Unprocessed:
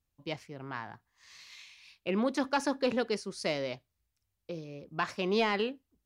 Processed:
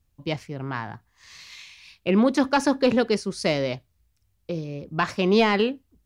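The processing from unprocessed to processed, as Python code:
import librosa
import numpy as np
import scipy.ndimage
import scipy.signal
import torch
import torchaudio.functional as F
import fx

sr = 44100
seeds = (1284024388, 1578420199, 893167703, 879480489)

y = fx.low_shelf(x, sr, hz=210.0, db=8.5)
y = y * librosa.db_to_amplitude(7.5)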